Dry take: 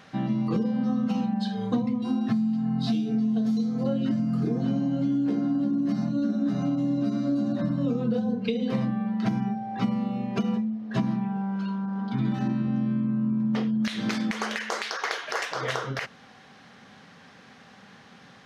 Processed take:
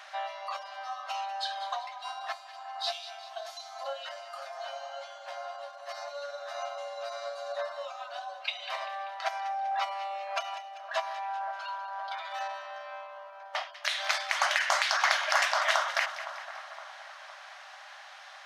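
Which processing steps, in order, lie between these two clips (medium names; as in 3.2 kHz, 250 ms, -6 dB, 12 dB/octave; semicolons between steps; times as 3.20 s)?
brick-wall FIR high-pass 560 Hz; on a send: two-band feedback delay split 1.6 kHz, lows 514 ms, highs 195 ms, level -12.5 dB; on the sum: trim +4.5 dB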